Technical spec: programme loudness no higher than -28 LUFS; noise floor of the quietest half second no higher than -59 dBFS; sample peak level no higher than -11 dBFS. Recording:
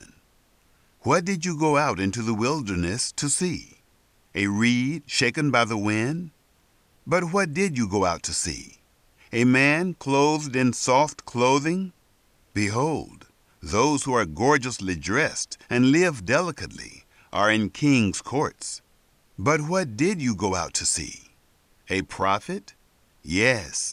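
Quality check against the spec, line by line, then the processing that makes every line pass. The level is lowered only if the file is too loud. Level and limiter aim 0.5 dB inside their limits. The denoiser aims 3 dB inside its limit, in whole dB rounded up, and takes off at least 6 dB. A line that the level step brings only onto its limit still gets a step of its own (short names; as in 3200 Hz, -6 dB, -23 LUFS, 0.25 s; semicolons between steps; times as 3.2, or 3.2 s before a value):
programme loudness -23.5 LUFS: fail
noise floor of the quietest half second -62 dBFS: OK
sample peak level -5.0 dBFS: fail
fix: gain -5 dB; limiter -11.5 dBFS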